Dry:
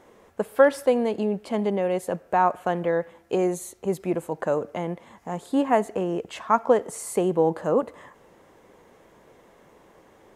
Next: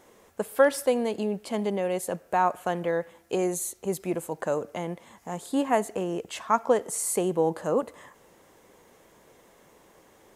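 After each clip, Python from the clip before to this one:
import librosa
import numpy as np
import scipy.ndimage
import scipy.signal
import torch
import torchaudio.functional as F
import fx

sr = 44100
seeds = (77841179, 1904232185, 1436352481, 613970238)

y = fx.high_shelf(x, sr, hz=4000.0, db=11.5)
y = F.gain(torch.from_numpy(y), -3.5).numpy()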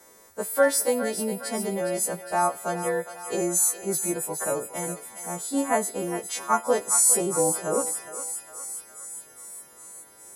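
y = fx.freq_snap(x, sr, grid_st=2)
y = fx.peak_eq(y, sr, hz=2900.0, db=-10.5, octaves=0.4)
y = fx.echo_thinned(y, sr, ms=411, feedback_pct=72, hz=980.0, wet_db=-8.5)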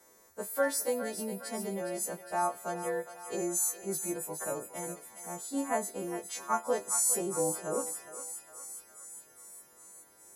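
y = fx.doubler(x, sr, ms=26.0, db=-12.5)
y = F.gain(torch.from_numpy(y), -8.0).numpy()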